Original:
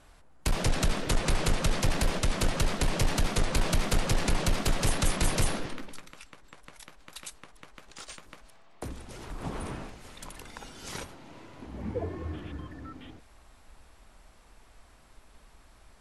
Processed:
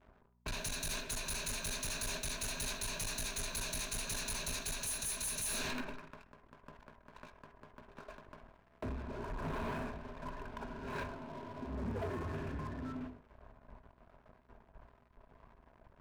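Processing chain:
low-pass that shuts in the quiet parts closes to 1,100 Hz, open at −25 dBFS
first-order pre-emphasis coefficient 0.9
low-pass that shuts in the quiet parts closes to 890 Hz, open at −33 dBFS
EQ curve with evenly spaced ripples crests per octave 1.5, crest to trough 12 dB
reversed playback
downward compressor 16 to 1, threshold −49 dBFS, peak gain reduction 22 dB
reversed playback
leveller curve on the samples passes 5
hum with harmonics 60 Hz, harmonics 4, −74 dBFS
on a send at −10 dB: convolution reverb RT60 0.55 s, pre-delay 3 ms
on the sum: every ending faded ahead of time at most 120 dB per second
level +2 dB

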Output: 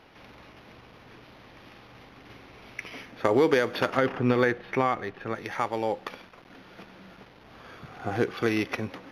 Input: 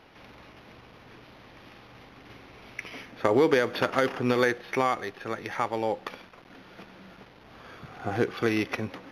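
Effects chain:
0:03.97–0:05.35: bass and treble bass +5 dB, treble −11 dB

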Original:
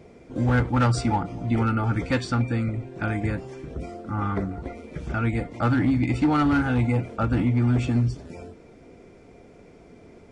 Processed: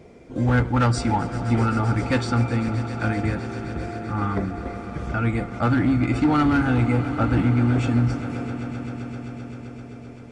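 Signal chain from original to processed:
echo that builds up and dies away 130 ms, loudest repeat 5, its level −16.5 dB
level +1.5 dB

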